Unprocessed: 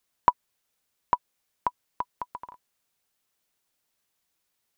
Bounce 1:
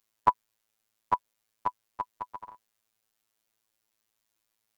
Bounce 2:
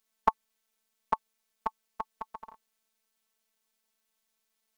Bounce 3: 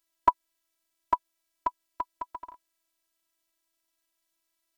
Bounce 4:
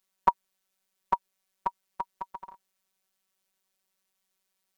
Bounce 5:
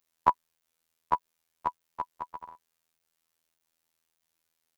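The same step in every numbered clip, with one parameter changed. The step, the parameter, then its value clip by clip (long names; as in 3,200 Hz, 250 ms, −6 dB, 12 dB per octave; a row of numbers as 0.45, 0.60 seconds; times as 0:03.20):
phases set to zero, frequency: 110, 220, 330, 190, 82 Hertz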